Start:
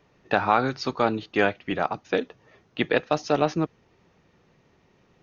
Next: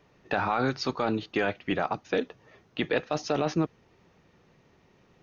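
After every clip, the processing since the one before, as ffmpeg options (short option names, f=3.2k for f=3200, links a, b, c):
-af "alimiter=limit=-15.5dB:level=0:latency=1:release=10"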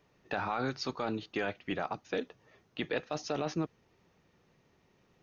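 -af "highshelf=f=5.5k:g=5.5,volume=-7dB"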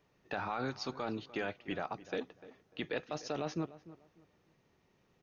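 -filter_complex "[0:a]asplit=2[a][b];[b]adelay=297,lowpass=f=1.9k:p=1,volume=-16.5dB,asplit=2[c][d];[d]adelay=297,lowpass=f=1.9k:p=1,volume=0.26,asplit=2[e][f];[f]adelay=297,lowpass=f=1.9k:p=1,volume=0.26[g];[a][c][e][g]amix=inputs=4:normalize=0,volume=-3.5dB"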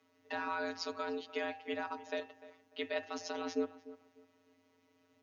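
-af "afftfilt=real='hypot(re,im)*cos(PI*b)':imag='0':win_size=1024:overlap=0.75,afreqshift=96,bandreject=f=78.72:t=h:w=4,bandreject=f=157.44:t=h:w=4,bandreject=f=236.16:t=h:w=4,bandreject=f=314.88:t=h:w=4,bandreject=f=393.6:t=h:w=4,bandreject=f=472.32:t=h:w=4,bandreject=f=551.04:t=h:w=4,bandreject=f=629.76:t=h:w=4,bandreject=f=708.48:t=h:w=4,bandreject=f=787.2:t=h:w=4,bandreject=f=865.92:t=h:w=4,bandreject=f=944.64:t=h:w=4,bandreject=f=1.02336k:t=h:w=4,bandreject=f=1.10208k:t=h:w=4,bandreject=f=1.1808k:t=h:w=4,bandreject=f=1.25952k:t=h:w=4,bandreject=f=1.33824k:t=h:w=4,bandreject=f=1.41696k:t=h:w=4,bandreject=f=1.49568k:t=h:w=4,bandreject=f=1.5744k:t=h:w=4,bandreject=f=1.65312k:t=h:w=4,bandreject=f=1.73184k:t=h:w=4,bandreject=f=1.81056k:t=h:w=4,bandreject=f=1.88928k:t=h:w=4,bandreject=f=1.968k:t=h:w=4,bandreject=f=2.04672k:t=h:w=4,bandreject=f=2.12544k:t=h:w=4,bandreject=f=2.20416k:t=h:w=4,bandreject=f=2.28288k:t=h:w=4,bandreject=f=2.3616k:t=h:w=4,bandreject=f=2.44032k:t=h:w=4,bandreject=f=2.51904k:t=h:w=4,bandreject=f=2.59776k:t=h:w=4,bandreject=f=2.67648k:t=h:w=4,bandreject=f=2.7552k:t=h:w=4,bandreject=f=2.83392k:t=h:w=4,bandreject=f=2.91264k:t=h:w=4,bandreject=f=2.99136k:t=h:w=4,bandreject=f=3.07008k:t=h:w=4,bandreject=f=3.1488k:t=h:w=4,volume=4dB"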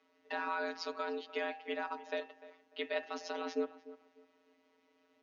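-af "highpass=280,lowpass=4.9k,volume=1dB"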